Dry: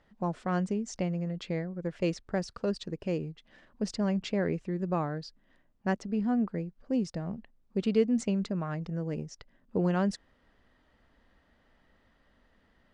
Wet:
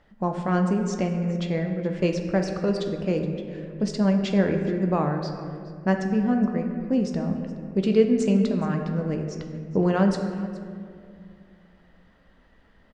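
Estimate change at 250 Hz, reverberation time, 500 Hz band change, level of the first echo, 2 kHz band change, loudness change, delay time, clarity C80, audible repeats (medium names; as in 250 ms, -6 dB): +7.5 dB, 2.3 s, +8.0 dB, -19.0 dB, +7.0 dB, +7.0 dB, 420 ms, 7.0 dB, 1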